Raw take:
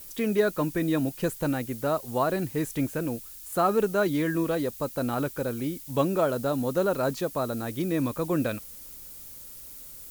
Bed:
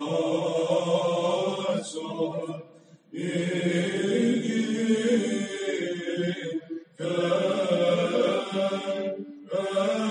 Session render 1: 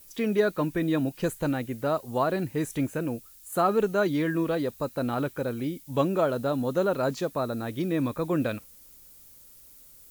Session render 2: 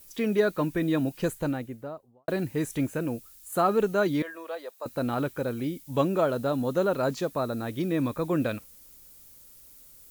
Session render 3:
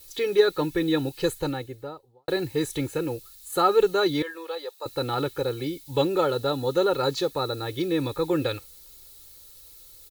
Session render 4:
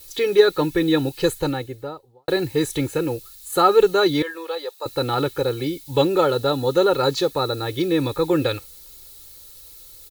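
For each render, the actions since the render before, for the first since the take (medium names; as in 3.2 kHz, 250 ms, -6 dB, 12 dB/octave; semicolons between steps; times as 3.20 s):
noise print and reduce 8 dB
1.22–2.28 s: studio fade out; 4.22–4.86 s: ladder high-pass 480 Hz, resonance 30%
peaking EQ 4 kHz +11 dB 0.46 oct; comb 2.3 ms, depth 90%
trim +5 dB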